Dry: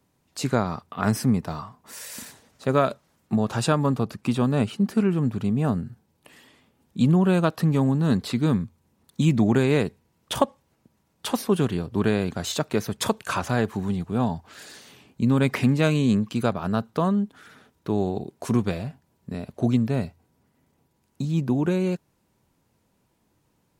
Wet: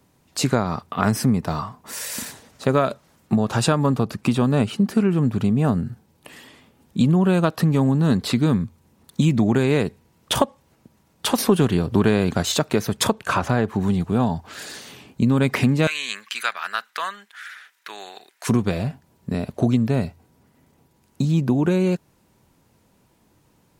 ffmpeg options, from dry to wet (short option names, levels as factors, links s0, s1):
-filter_complex "[0:a]asettb=1/sr,asplit=3[s0][s1][s2];[s0]atrim=end=11.384[s3];[s1]atrim=start=11.38:end=12.43,asetpts=PTS-STARTPTS,afade=t=in:d=0.004:c=qsin,afade=t=out:st=1.046:d=0.004:c=qsin,acontrast=36[s4];[s2]atrim=start=12.426[s5];[s3][s4]acrossfade=d=0.004:c1=hsin:c2=qsin[s6];[s6][s5]acrossfade=d=0.004:c1=qsin:c2=hsin,asettb=1/sr,asplit=3[s7][s8][s9];[s7]atrim=end=13.074[s10];[s8]atrim=start=13.07:end=13.81,asetpts=PTS-STARTPTS,afade=t=in:d=0.004:c=qsin,afade=t=out:st=0.736:d=0.004:c=qsin,highshelf=f=3500:g=-9[s11];[s9]atrim=start=13.806[s12];[s10][s11]acrossfade=d=0.004:c1=hsin:c2=qsin[s13];[s13][s12]acrossfade=d=0.004:c1=qsin:c2=hsin,asettb=1/sr,asplit=3[s14][s15][s16];[s14]atrim=end=15.874[s17];[s15]atrim=start=15.87:end=18.47,asetpts=PTS-STARTPTS,afade=t=in:d=0.004:c=qsin,afade=t=out:st=2.596:d=0.004:c=qsin,highpass=f=1800:t=q:w=2.5[s18];[s16]atrim=start=18.466[s19];[s17][s18]acrossfade=d=0.004:c1=hsin:c2=qsin[s20];[s20][s19]acrossfade=d=0.004:c1=qsin:c2=hsin,acompressor=threshold=0.0562:ratio=2.5,volume=2.51"